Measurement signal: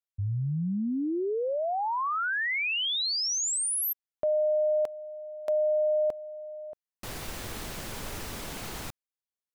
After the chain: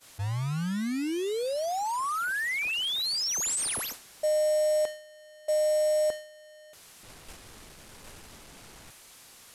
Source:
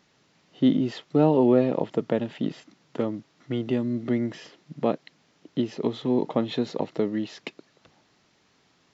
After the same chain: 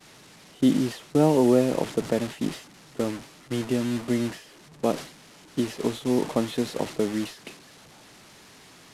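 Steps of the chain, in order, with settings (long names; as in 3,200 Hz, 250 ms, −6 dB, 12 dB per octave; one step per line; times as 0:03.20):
linear delta modulator 64 kbit/s, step −29.5 dBFS
downward expander −27 dBFS, range −33 dB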